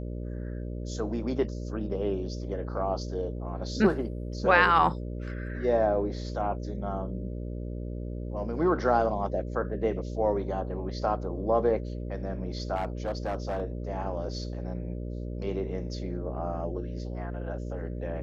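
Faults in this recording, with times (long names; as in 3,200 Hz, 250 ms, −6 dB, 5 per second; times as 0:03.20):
mains buzz 60 Hz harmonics 10 −35 dBFS
0:12.75–0:13.62: clipping −25.5 dBFS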